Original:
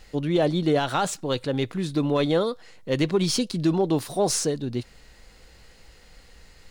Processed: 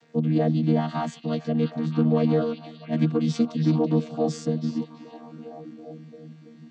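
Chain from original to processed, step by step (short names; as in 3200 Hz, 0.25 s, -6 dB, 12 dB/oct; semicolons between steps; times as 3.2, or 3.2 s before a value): chord vocoder bare fifth, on D#3; delay with a stepping band-pass 0.331 s, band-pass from 3500 Hz, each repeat -0.7 oct, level -3.5 dB; gain +1.5 dB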